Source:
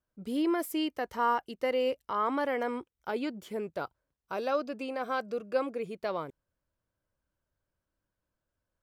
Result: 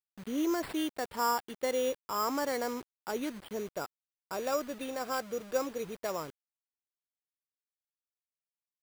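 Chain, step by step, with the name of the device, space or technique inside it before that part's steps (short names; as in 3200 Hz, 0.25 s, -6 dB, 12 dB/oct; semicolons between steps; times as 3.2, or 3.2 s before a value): early 8-bit sampler (sample-rate reducer 6300 Hz, jitter 0%; bit-crush 8-bit); gain -2 dB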